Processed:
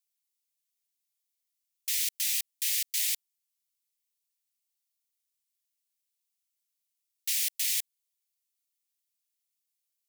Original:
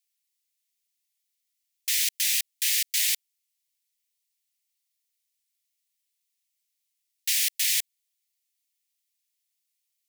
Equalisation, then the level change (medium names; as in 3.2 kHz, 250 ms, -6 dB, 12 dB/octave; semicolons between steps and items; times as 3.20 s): high-pass 1.5 kHz; treble shelf 6 kHz +4.5 dB; -7.5 dB